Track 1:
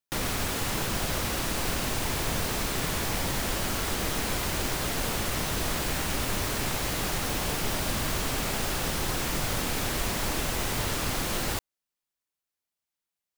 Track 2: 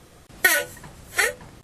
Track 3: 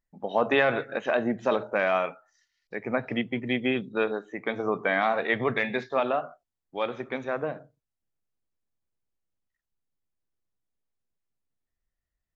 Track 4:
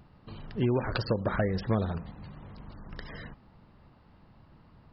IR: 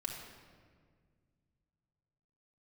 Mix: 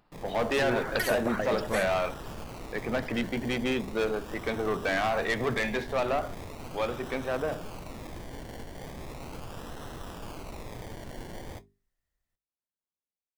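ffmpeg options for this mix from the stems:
-filter_complex "[0:a]lowpass=frequency=2600:width=0.5412,lowpass=frequency=2600:width=1.3066,flanger=delay=8.9:depth=9.4:regen=-62:speed=0.18:shape=sinusoidal,acrusher=samples=27:mix=1:aa=0.000001:lfo=1:lforange=16.2:lforate=0.38,volume=-9.5dB[link_01];[1:a]adelay=550,volume=-19dB[link_02];[2:a]asoftclip=type=tanh:threshold=-24.5dB,volume=-2dB[link_03];[3:a]equalizer=frequency=82:width=0.45:gain=-14.5,volume=-4.5dB[link_04];[link_01][link_02][link_03][link_04]amix=inputs=4:normalize=0,bandreject=frequency=50:width_type=h:width=6,bandreject=frequency=100:width_type=h:width=6,bandreject=frequency=150:width_type=h:width=6,bandreject=frequency=200:width_type=h:width=6,bandreject=frequency=250:width_type=h:width=6,bandreject=frequency=300:width_type=h:width=6,bandreject=frequency=350:width_type=h:width=6,bandreject=frequency=400:width_type=h:width=6,dynaudnorm=framelen=100:gausssize=5:maxgain=4dB"

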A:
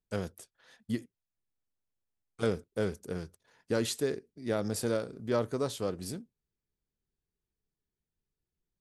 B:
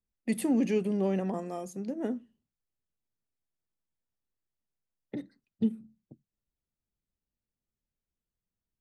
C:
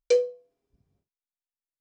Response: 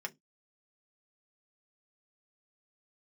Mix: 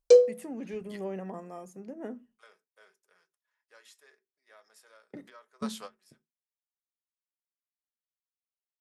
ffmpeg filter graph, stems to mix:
-filter_complex "[0:a]highpass=1000,volume=-8dB,asplit=2[link_01][link_02];[link_02]volume=-20.5dB[link_03];[1:a]agate=range=-33dB:threshold=-52dB:ratio=3:detection=peak,equalizer=frequency=4000:width=2.3:gain=-7.5,volume=-14.5dB,asplit=3[link_04][link_05][link_06];[link_05]volume=-8.5dB[link_07];[2:a]equalizer=frequency=2100:width_type=o:width=1.4:gain=-13,volume=3dB[link_08];[link_06]apad=whole_len=388433[link_09];[link_01][link_09]sidechaingate=range=-27dB:threshold=-59dB:ratio=16:detection=peak[link_10];[3:a]atrim=start_sample=2205[link_11];[link_03][link_07]amix=inputs=2:normalize=0[link_12];[link_12][link_11]afir=irnorm=-1:irlink=0[link_13];[link_10][link_04][link_08][link_13]amix=inputs=4:normalize=0,equalizer=frequency=1100:width=0.49:gain=4.5,dynaudnorm=framelen=390:gausssize=5:maxgain=5.5dB"

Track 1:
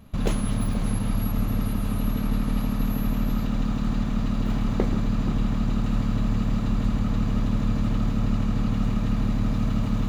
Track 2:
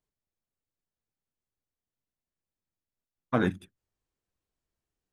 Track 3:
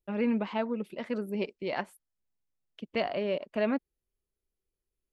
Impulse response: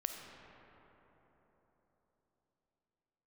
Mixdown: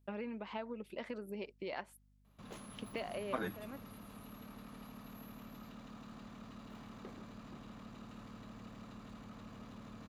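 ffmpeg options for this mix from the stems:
-filter_complex "[0:a]highpass=frequency=130:poles=1,equalizer=frequency=1100:width_type=o:width=0.32:gain=3,asoftclip=type=tanh:threshold=-22.5dB,adelay=2250,volume=-17dB[link_01];[1:a]acompressor=threshold=-29dB:ratio=3,asplit=2[link_02][link_03];[link_03]adelay=6.8,afreqshift=2.6[link_04];[link_02][link_04]amix=inputs=2:normalize=1,volume=-1.5dB,asplit=2[link_05][link_06];[2:a]acompressor=threshold=-38dB:ratio=8,volume=0.5dB[link_07];[link_06]apad=whole_len=226208[link_08];[link_07][link_08]sidechaincompress=threshold=-45dB:ratio=8:attack=16:release=466[link_09];[link_01][link_05][link_09]amix=inputs=3:normalize=0,lowshelf=frequency=180:gain=-10.5,aeval=exprs='val(0)+0.000398*(sin(2*PI*50*n/s)+sin(2*PI*2*50*n/s)/2+sin(2*PI*3*50*n/s)/3+sin(2*PI*4*50*n/s)/4+sin(2*PI*5*50*n/s)/5)':channel_layout=same"

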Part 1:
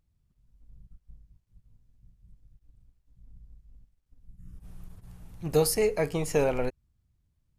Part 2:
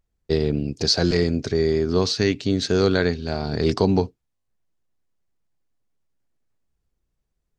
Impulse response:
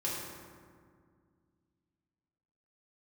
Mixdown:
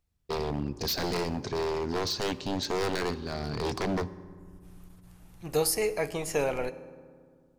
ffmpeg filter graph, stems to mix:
-filter_complex "[0:a]lowshelf=frequency=440:gain=-8.5,volume=0dB,asplit=2[link_01][link_02];[link_02]volume=-17dB[link_03];[1:a]aeval=exprs='0.133*(abs(mod(val(0)/0.133+3,4)-2)-1)':channel_layout=same,volume=-7dB,asplit=2[link_04][link_05];[link_05]volume=-18dB[link_06];[2:a]atrim=start_sample=2205[link_07];[link_03][link_06]amix=inputs=2:normalize=0[link_08];[link_08][link_07]afir=irnorm=-1:irlink=0[link_09];[link_01][link_04][link_09]amix=inputs=3:normalize=0"

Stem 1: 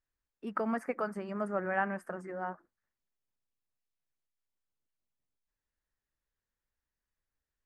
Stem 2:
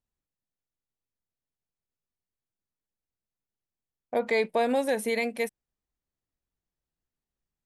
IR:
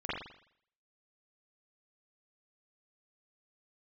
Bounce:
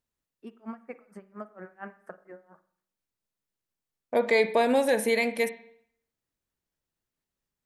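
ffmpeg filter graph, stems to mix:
-filter_complex "[0:a]aeval=exprs='val(0)*pow(10,-36*(0.5-0.5*cos(2*PI*4.3*n/s))/20)':channel_layout=same,volume=-2dB,asplit=2[link_01][link_02];[link_02]volume=-19dB[link_03];[1:a]bandreject=frequency=750:width=12,volume=2.5dB,asplit=2[link_04][link_05];[link_05]volume=-16dB[link_06];[2:a]atrim=start_sample=2205[link_07];[link_03][link_06]amix=inputs=2:normalize=0[link_08];[link_08][link_07]afir=irnorm=-1:irlink=0[link_09];[link_01][link_04][link_09]amix=inputs=3:normalize=0,lowshelf=frequency=78:gain=-9"

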